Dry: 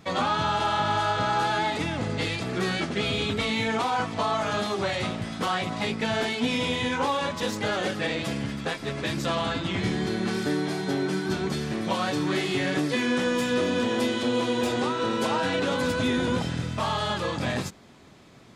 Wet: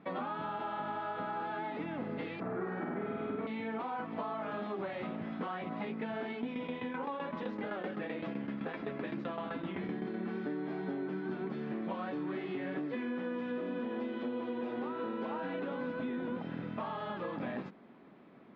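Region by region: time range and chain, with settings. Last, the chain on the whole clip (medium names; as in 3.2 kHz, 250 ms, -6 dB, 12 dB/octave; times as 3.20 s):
2.40–3.47 s: resonant high shelf 2.1 kHz -12 dB, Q 1.5 + flutter echo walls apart 8.5 m, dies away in 1.3 s
6.30–10.14 s: tremolo saw down 7.8 Hz, depth 80% + level flattener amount 50%
whole clip: resonant low shelf 140 Hz -14 dB, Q 1.5; compression, threshold -29 dBFS; Bessel low-pass 1.8 kHz, order 4; trim -5 dB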